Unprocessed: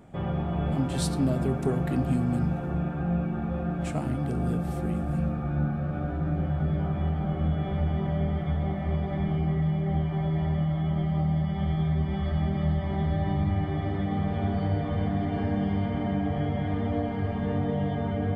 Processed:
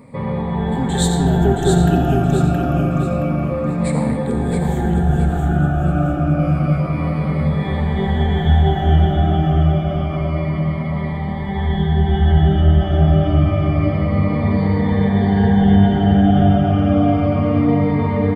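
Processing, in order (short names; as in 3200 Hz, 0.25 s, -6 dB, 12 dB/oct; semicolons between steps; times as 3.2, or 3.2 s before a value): moving spectral ripple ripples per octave 0.96, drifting -0.28 Hz, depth 18 dB; 6.39–9.05 high shelf 2700 Hz +8 dB; feedback echo 0.671 s, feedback 34%, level -5 dB; reverb RT60 1.2 s, pre-delay 35 ms, DRR 5 dB; gain +6 dB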